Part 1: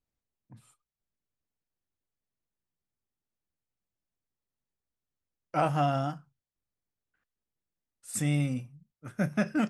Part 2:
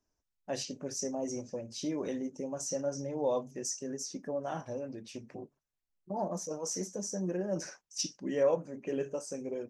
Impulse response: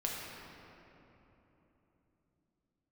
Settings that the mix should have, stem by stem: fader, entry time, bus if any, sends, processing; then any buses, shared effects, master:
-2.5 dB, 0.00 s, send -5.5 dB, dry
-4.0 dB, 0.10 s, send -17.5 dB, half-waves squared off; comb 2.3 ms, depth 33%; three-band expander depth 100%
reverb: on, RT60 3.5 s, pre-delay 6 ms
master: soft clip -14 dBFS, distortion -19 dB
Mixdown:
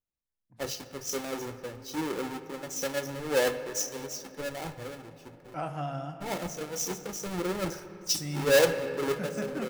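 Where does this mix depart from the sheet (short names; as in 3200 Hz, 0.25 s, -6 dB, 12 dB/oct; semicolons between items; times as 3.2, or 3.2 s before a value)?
stem 1 -2.5 dB -> -12.0 dB; stem 2: send -17.5 dB -> -11.5 dB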